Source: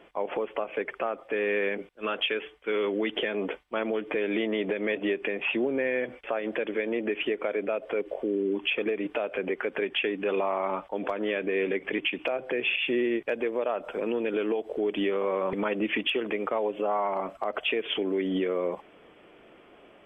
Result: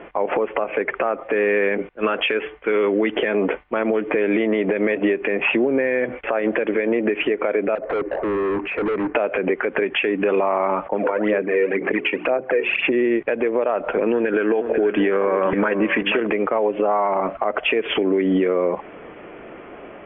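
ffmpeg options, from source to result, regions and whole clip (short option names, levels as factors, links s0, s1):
-filter_complex "[0:a]asettb=1/sr,asplit=3[s0][s1][s2];[s0]atrim=end=7.754[s3];[s1]atrim=start=7.75:end=9.15,asetpts=PTS-STARTPTS,afade=t=in:d=0.004:c=qsin,afade=t=out:st=1.396:d=0.004:c=qsin,lowpass=f=2000:w=0.5412,lowpass=f=2000:w=1.3066,volume=59.6,asoftclip=hard,volume=0.0168[s4];[s2]atrim=start=9.146[s5];[s3][s4]acrossfade=d=0.004:c1=hsin:c2=qsin[s6];[s6][s5]acrossfade=d=0.004:c1=qsin:c2=hsin,asettb=1/sr,asplit=3[s7][s8][s9];[s7]atrim=end=10.864[s10];[s8]atrim=start=10.86:end=12.92,asetpts=PTS-STARTPTS,afade=t=in:d=0.004:c=qsin,afade=t=out:st=2.056:d=0.004:c=qsin,highpass=160,lowpass=2400,bandreject=f=60:t=h:w=6,bandreject=f=120:t=h:w=6,bandreject=f=180:t=h:w=6,bandreject=f=240:t=h:w=6,bandreject=f=300:t=h:w=6,bandreject=f=360:t=h:w=6,bandreject=f=420:t=h:w=6,aphaser=in_gain=1:out_gain=1:delay=2.2:decay=0.61:speed=2:type=sinusoidal[s11];[s9]atrim=start=12.916[s12];[s10][s11]acrossfade=d=0.004:c1=hsin:c2=qsin[s13];[s13][s12]acrossfade=d=0.004:c1=qsin:c2=hsin,asettb=1/sr,asplit=3[s14][s15][s16];[s14]atrim=end=14.124[s17];[s15]atrim=start=14.12:end=16.2,asetpts=PTS-STARTPTS,afade=t=in:d=0.004:c=qsin,afade=t=out:st=2.076:d=0.004:c=qsin,equalizer=f=1600:w=5.4:g=12,aecho=1:1:486:0.251,atrim=end_sample=91728[s18];[s16]atrim=start=16.196[s19];[s17][s18]acrossfade=d=0.004:c1=hsin:c2=qsin[s20];[s20][s19]acrossfade=d=0.004:c1=qsin:c2=hsin,lowpass=f=2400:w=0.5412,lowpass=f=2400:w=1.3066,acompressor=threshold=0.0282:ratio=6,alimiter=level_in=16.8:limit=0.891:release=50:level=0:latency=1,volume=0.355"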